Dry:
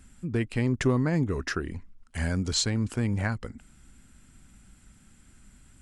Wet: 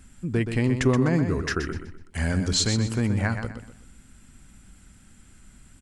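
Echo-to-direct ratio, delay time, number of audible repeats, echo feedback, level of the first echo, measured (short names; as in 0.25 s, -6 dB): -7.5 dB, 0.125 s, 3, 33%, -8.0 dB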